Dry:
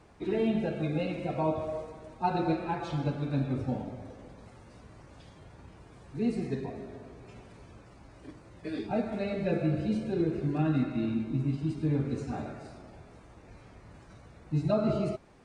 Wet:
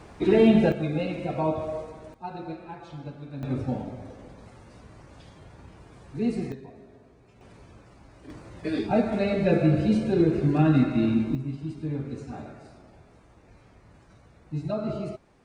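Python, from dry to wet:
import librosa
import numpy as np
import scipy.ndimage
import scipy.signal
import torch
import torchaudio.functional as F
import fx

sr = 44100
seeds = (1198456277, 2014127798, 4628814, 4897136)

y = fx.gain(x, sr, db=fx.steps((0.0, 10.5), (0.72, 3.0), (2.14, -8.0), (3.43, 3.0), (6.52, -7.5), (7.41, 1.0), (8.3, 7.5), (11.35, -2.5)))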